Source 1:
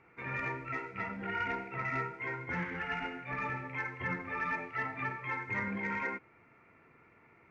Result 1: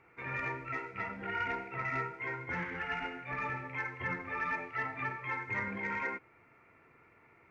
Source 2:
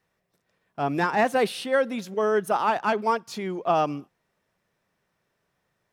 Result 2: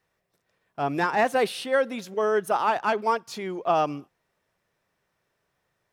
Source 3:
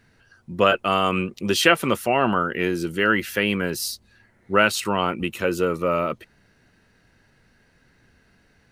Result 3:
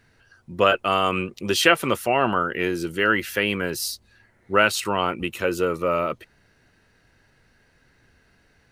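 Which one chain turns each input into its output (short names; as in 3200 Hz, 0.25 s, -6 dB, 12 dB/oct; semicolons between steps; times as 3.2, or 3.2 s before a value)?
bell 200 Hz -4.5 dB 0.87 oct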